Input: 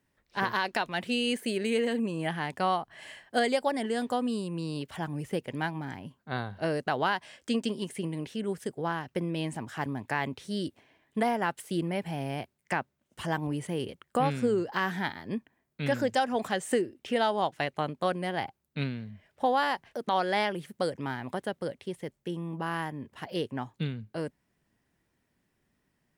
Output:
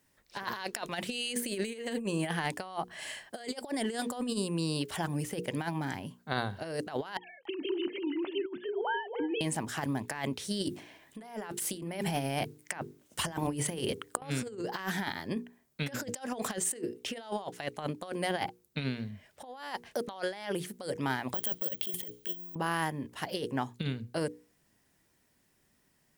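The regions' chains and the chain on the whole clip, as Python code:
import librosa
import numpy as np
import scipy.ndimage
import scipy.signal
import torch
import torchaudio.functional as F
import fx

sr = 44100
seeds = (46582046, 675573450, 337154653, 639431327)

y = fx.chain(x, sr, fx.sine_speech(),
    fx.echo_single(ms=283, db=-12.5), at=(7.17, 9.41))
y = fx.chain(y, sr, fx.hum_notches(base_hz=50, count=9),
    fx.over_compress(threshold_db=-36.0, ratio=-0.5), at=(10.61, 14.22))
y = fx.chain(y, sr, fx.over_compress(threshold_db=-36.0, ratio=-0.5),
    fx.peak_eq(hz=3200.0, db=14.0, octaves=0.28),
    fx.resample_bad(factor=2, down='none', up='zero_stuff'), at=(21.34, 22.55))
y = fx.bass_treble(y, sr, bass_db=-2, treble_db=8)
y = fx.hum_notches(y, sr, base_hz=60, count=8)
y = fx.over_compress(y, sr, threshold_db=-33.0, ratio=-0.5)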